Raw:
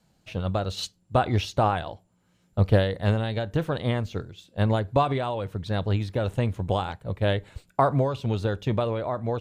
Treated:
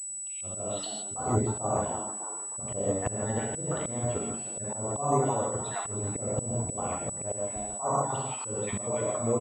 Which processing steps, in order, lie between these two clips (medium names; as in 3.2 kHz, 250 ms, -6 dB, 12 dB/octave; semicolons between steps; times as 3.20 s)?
random holes in the spectrogram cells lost 42%; low-pass that closes with the level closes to 1 kHz, closed at -22 dBFS; bass shelf 130 Hz -10 dB; band-stop 1.6 kHz, Q 6.5; frequency-shifting echo 310 ms, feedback 45%, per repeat +110 Hz, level -16 dB; gated-style reverb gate 190 ms flat, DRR -1.5 dB; slow attack 227 ms; class-D stage that switches slowly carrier 7.9 kHz